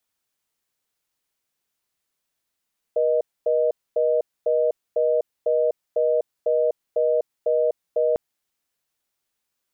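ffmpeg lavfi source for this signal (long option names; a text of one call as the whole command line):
ffmpeg -f lavfi -i "aevalsrc='0.1*(sin(2*PI*480*t)+sin(2*PI*620*t))*clip(min(mod(t,0.5),0.25-mod(t,0.5))/0.005,0,1)':duration=5.2:sample_rate=44100" out.wav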